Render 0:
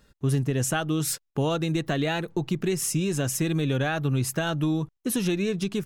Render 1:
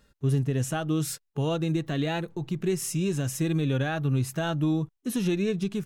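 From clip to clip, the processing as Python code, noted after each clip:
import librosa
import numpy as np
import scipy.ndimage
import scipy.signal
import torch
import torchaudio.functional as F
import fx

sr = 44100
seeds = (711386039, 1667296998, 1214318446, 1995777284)

y = fx.hpss(x, sr, part='percussive', gain_db=-8)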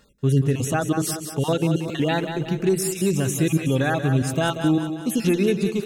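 y = fx.spec_dropout(x, sr, seeds[0], share_pct=32)
y = fx.low_shelf(y, sr, hz=120.0, db=-7.5)
y = fx.echo_split(y, sr, split_hz=340.0, low_ms=116, high_ms=184, feedback_pct=52, wet_db=-8.0)
y = F.gain(torch.from_numpy(y), 7.5).numpy()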